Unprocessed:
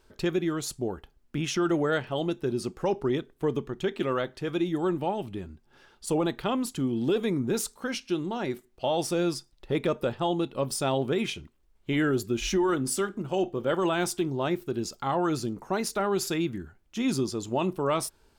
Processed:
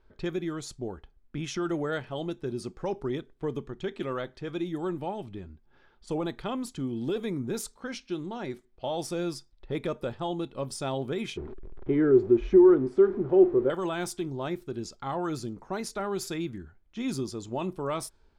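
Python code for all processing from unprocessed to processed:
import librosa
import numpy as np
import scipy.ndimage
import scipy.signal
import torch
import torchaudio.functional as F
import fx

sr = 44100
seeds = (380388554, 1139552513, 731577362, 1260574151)

y = fx.chain(x, sr, fx.zero_step(step_db=-36.0),
    fx.lowpass(hz=1400.0, slope=12),
    fx.peak_eq(hz=380.0, db=14.5, octaves=0.53), at=(11.37, 13.7))
y = fx.notch(y, sr, hz=2800.0, q=14.0)
y = fx.env_lowpass(y, sr, base_hz=2900.0, full_db=-23.5)
y = fx.low_shelf(y, sr, hz=61.0, db=9.0)
y = F.gain(torch.from_numpy(y), -5.0).numpy()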